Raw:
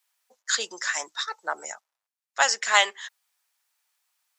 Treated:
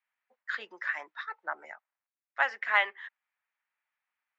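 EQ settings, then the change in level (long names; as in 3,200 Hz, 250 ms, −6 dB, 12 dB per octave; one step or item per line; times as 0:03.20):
high-pass filter 160 Hz
transistor ladder low-pass 2,500 Hz, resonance 40%
notch filter 460 Hz, Q 12
0.0 dB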